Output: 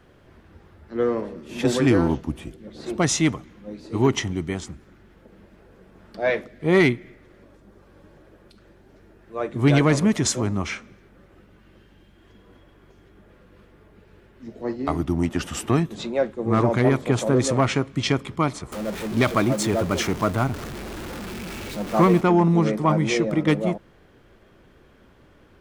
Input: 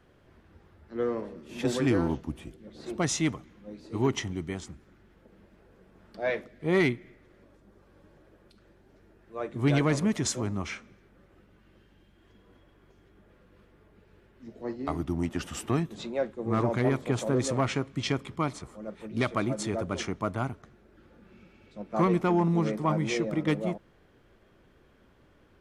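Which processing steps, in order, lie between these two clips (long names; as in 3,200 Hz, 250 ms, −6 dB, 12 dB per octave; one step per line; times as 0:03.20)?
0:18.72–0:22.21: converter with a step at zero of −36 dBFS
level +7 dB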